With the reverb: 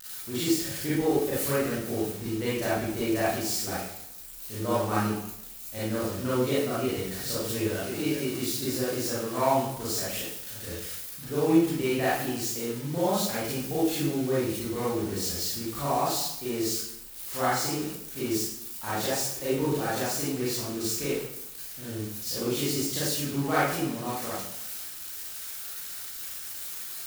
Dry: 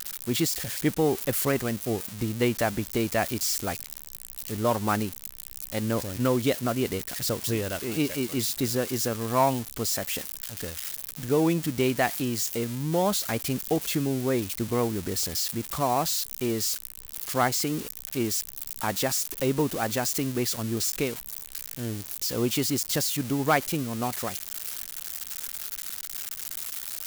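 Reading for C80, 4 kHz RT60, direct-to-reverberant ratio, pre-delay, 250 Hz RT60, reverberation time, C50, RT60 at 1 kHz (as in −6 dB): 3.0 dB, 0.65 s, −10.5 dB, 31 ms, 0.85 s, 0.80 s, −3.0 dB, 0.80 s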